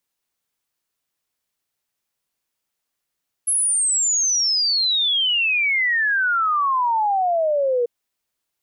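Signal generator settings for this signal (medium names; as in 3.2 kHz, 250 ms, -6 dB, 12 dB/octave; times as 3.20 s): log sweep 11 kHz -> 470 Hz 4.39 s -16.5 dBFS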